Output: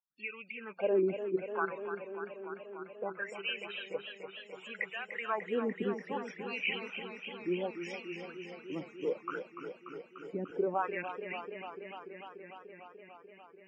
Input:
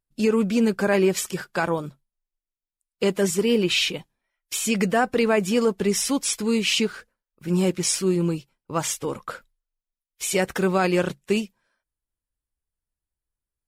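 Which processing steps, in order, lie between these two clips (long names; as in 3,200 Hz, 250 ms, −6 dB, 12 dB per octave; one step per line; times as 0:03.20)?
LFO wah 0.65 Hz 260–2,600 Hz, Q 5.9
spectral peaks only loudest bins 32
feedback echo with a swinging delay time 294 ms, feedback 80%, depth 76 cents, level −9.5 dB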